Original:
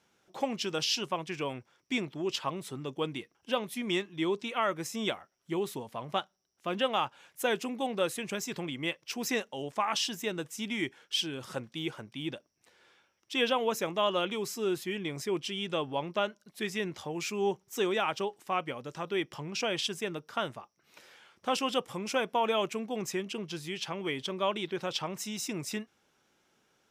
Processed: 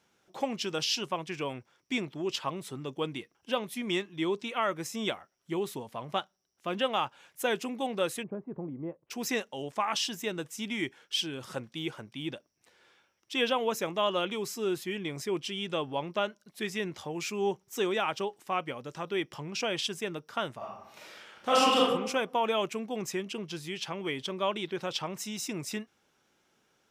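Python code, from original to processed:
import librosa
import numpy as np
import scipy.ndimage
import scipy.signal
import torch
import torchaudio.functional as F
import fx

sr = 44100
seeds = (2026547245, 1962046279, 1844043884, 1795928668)

y = fx.bessel_lowpass(x, sr, hz=650.0, order=4, at=(8.22, 9.1), fade=0.02)
y = fx.reverb_throw(y, sr, start_s=20.57, length_s=1.24, rt60_s=0.85, drr_db=-6.5)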